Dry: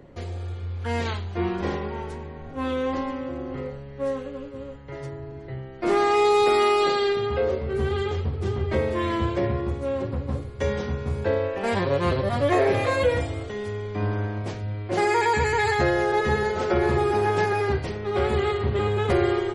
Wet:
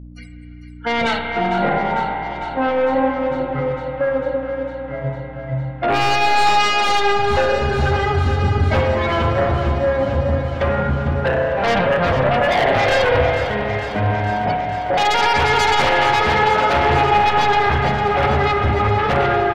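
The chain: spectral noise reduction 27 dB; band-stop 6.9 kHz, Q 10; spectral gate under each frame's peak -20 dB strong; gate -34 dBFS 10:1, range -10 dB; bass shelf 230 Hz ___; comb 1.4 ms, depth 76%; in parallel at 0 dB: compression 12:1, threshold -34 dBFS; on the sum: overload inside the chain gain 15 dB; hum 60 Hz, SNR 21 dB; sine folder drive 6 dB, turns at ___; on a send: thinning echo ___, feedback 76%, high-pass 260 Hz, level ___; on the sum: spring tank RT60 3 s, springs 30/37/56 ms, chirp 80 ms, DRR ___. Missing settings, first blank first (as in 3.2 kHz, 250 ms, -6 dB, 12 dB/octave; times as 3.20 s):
-6.5 dB, -14.5 dBFS, 452 ms, -11 dB, 3.5 dB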